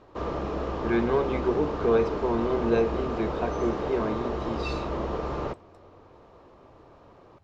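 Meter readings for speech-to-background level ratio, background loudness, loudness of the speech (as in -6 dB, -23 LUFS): 3.0 dB, -31.5 LUFS, -28.5 LUFS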